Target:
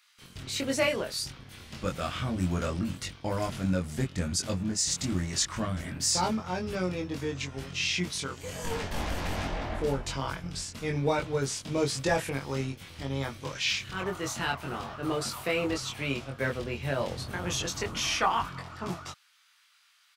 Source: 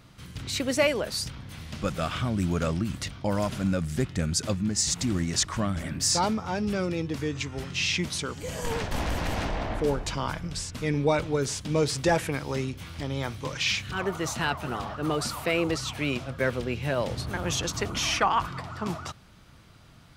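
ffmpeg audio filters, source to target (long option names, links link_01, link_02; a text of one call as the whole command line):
ffmpeg -i in.wav -filter_complex "[0:a]acrossover=split=1300[link_01][link_02];[link_01]aeval=exprs='sgn(val(0))*max(abs(val(0))-0.00631,0)':channel_layout=same[link_03];[link_03][link_02]amix=inputs=2:normalize=0,asplit=2[link_04][link_05];[link_05]adelay=22,volume=-2.5dB[link_06];[link_04][link_06]amix=inputs=2:normalize=0,volume=-4dB" out.wav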